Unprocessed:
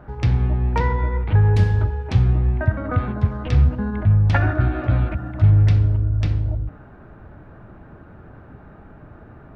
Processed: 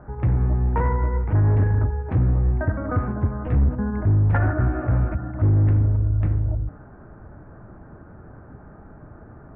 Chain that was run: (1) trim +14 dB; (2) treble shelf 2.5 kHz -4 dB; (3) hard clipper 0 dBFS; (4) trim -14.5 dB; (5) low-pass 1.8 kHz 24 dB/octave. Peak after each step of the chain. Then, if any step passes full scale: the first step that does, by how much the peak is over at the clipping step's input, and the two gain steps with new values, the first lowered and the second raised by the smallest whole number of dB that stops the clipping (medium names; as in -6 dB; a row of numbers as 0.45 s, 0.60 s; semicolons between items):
+8.5 dBFS, +8.5 dBFS, 0.0 dBFS, -14.5 dBFS, -13.0 dBFS; step 1, 8.5 dB; step 1 +5 dB, step 4 -5.5 dB